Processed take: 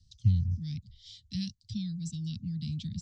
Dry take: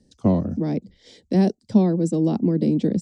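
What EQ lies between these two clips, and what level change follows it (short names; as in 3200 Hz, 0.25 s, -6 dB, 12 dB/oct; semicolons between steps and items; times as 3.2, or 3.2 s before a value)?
elliptic band-stop 110–3400 Hz, stop band 60 dB; LPF 7000 Hz 24 dB/oct; high shelf 5200 Hz -8 dB; +4.5 dB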